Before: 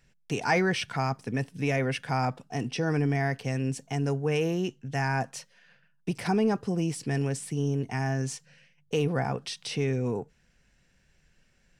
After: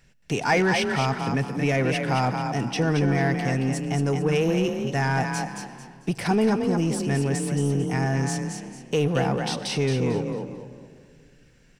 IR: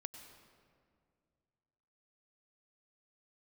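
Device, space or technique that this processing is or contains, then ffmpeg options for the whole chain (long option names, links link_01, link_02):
saturated reverb return: -filter_complex "[0:a]asplit=5[link_01][link_02][link_03][link_04][link_05];[link_02]adelay=223,afreqshift=33,volume=-6dB[link_06];[link_03]adelay=446,afreqshift=66,volume=-16.5dB[link_07];[link_04]adelay=669,afreqshift=99,volume=-26.9dB[link_08];[link_05]adelay=892,afreqshift=132,volume=-37.4dB[link_09];[link_01][link_06][link_07][link_08][link_09]amix=inputs=5:normalize=0,asplit=2[link_10][link_11];[1:a]atrim=start_sample=2205[link_12];[link_11][link_12]afir=irnorm=-1:irlink=0,asoftclip=type=tanh:threshold=-32.5dB,volume=0.5dB[link_13];[link_10][link_13]amix=inputs=2:normalize=0,volume=1.5dB"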